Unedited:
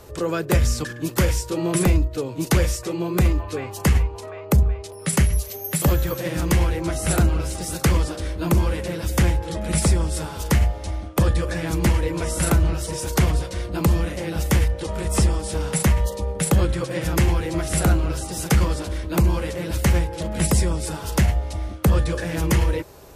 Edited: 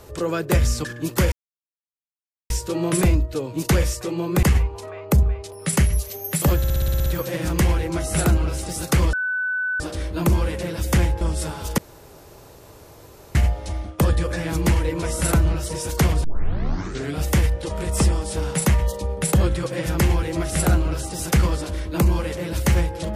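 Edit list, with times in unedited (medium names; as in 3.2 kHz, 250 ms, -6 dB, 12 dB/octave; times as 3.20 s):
1.32 s: insert silence 1.18 s
3.25–3.83 s: delete
5.98 s: stutter 0.06 s, 9 plays
8.05 s: add tone 1.5 kHz -21 dBFS 0.67 s
9.46–9.96 s: delete
10.53 s: insert room tone 1.57 s
13.42 s: tape start 1.00 s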